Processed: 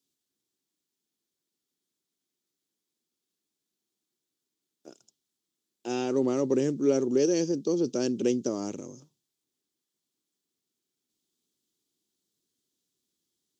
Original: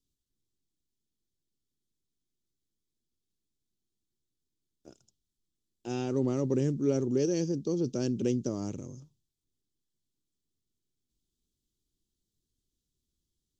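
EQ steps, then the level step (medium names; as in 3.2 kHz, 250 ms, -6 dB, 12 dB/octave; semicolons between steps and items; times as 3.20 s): high-pass 270 Hz 12 dB/octave; +5.5 dB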